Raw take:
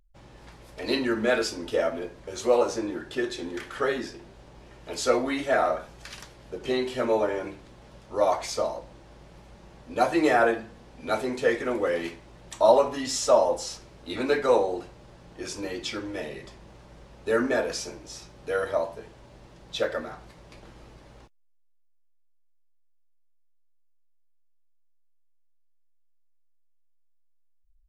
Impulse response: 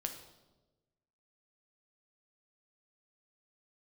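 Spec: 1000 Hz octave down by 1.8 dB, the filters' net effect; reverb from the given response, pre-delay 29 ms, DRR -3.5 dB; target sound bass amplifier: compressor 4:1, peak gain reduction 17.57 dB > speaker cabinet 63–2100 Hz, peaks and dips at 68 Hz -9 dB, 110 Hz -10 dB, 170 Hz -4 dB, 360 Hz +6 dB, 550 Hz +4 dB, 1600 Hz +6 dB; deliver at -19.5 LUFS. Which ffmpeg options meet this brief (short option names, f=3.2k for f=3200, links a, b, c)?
-filter_complex "[0:a]equalizer=f=1k:t=o:g=-4,asplit=2[a][b];[1:a]atrim=start_sample=2205,adelay=29[c];[b][c]afir=irnorm=-1:irlink=0,volume=4dB[d];[a][d]amix=inputs=2:normalize=0,acompressor=threshold=-30dB:ratio=4,highpass=f=63:w=0.5412,highpass=f=63:w=1.3066,equalizer=f=68:t=q:w=4:g=-9,equalizer=f=110:t=q:w=4:g=-10,equalizer=f=170:t=q:w=4:g=-4,equalizer=f=360:t=q:w=4:g=6,equalizer=f=550:t=q:w=4:g=4,equalizer=f=1.6k:t=q:w=4:g=6,lowpass=f=2.1k:w=0.5412,lowpass=f=2.1k:w=1.3066,volume=11dB"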